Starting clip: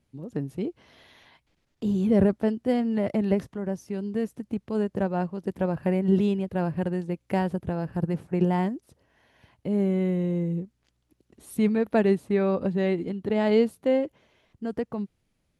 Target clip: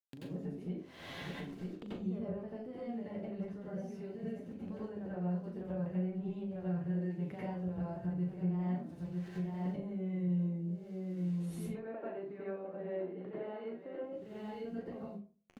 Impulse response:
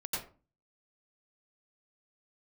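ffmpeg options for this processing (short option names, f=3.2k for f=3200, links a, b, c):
-filter_complex "[0:a]aecho=1:1:949:0.133,acrusher=bits=9:mix=0:aa=0.000001,flanger=delay=2.7:depth=5.1:regen=87:speed=2:shape=sinusoidal,aemphasis=mode=reproduction:type=50kf,flanger=delay=10:depth=2.6:regen=46:speed=0.63:shape=triangular,asoftclip=type=tanh:threshold=-21.5dB,asettb=1/sr,asplit=3[a][b][c];[a]atrim=end=11.664[d];[b]atrim=start=11.66:end=14.04,asetpts=PTS-STARTPTS,afade=t=in:d=0.004:c=qsin,afade=t=out:st=2.376:d=0.004:c=qsin,highpass=350,lowpass=2k[e];[c]atrim=start=14.036[f];[d][e]acrossfade=d=0.004:c1=hsin:c2=qsin[g];[g][f]acrossfade=d=0.004:c1=qsin:c2=hsin,acompressor=mode=upward:threshold=-41dB:ratio=2.5,bandreject=f=920:w=19,acompressor=threshold=-51dB:ratio=6,asplit=2[h][i];[i]adelay=39,volume=-7.5dB[j];[h][j]amix=inputs=2:normalize=0[k];[1:a]atrim=start_sample=2205[l];[k][l]afir=irnorm=-1:irlink=0,volume=7.5dB"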